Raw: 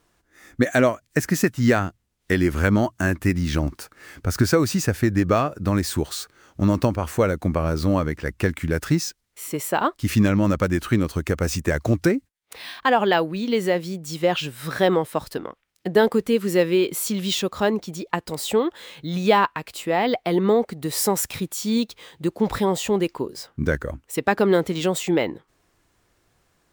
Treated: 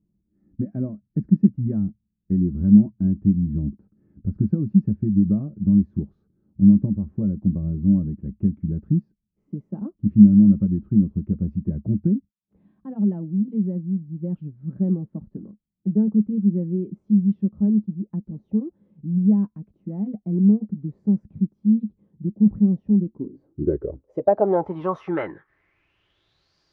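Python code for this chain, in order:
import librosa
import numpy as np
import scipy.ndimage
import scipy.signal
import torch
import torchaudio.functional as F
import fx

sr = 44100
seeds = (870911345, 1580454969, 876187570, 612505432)

y = fx.freq_compress(x, sr, knee_hz=3700.0, ratio=1.5)
y = fx.notch_comb(y, sr, f0_hz=240.0)
y = fx.filter_sweep_lowpass(y, sr, from_hz=210.0, to_hz=4700.0, start_s=23.07, end_s=26.55, q=7.5)
y = y * 10.0 ** (-5.0 / 20.0)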